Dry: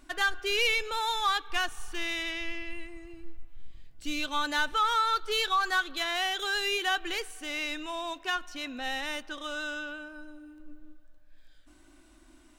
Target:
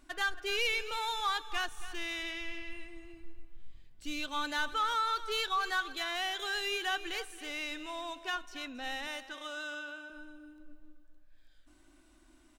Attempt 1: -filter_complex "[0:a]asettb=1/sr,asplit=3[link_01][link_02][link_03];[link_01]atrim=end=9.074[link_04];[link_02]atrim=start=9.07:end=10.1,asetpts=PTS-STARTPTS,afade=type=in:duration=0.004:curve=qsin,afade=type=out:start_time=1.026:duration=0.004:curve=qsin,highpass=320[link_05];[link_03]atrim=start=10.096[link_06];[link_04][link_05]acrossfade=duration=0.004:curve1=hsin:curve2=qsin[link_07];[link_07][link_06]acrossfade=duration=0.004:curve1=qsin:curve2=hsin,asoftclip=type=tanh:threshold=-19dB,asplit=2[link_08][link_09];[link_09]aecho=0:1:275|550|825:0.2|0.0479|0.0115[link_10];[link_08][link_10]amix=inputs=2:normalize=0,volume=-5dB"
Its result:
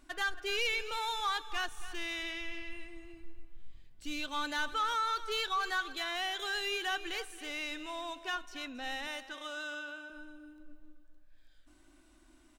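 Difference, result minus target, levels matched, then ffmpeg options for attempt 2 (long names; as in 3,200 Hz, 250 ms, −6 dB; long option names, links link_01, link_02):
soft clipping: distortion +18 dB
-filter_complex "[0:a]asettb=1/sr,asplit=3[link_01][link_02][link_03];[link_01]atrim=end=9.074[link_04];[link_02]atrim=start=9.07:end=10.1,asetpts=PTS-STARTPTS,afade=type=in:duration=0.004:curve=qsin,afade=type=out:start_time=1.026:duration=0.004:curve=qsin,highpass=320[link_05];[link_03]atrim=start=10.096[link_06];[link_04][link_05]acrossfade=duration=0.004:curve1=hsin:curve2=qsin[link_07];[link_07][link_06]acrossfade=duration=0.004:curve1=qsin:curve2=hsin,asoftclip=type=tanh:threshold=-9dB,asplit=2[link_08][link_09];[link_09]aecho=0:1:275|550|825:0.2|0.0479|0.0115[link_10];[link_08][link_10]amix=inputs=2:normalize=0,volume=-5dB"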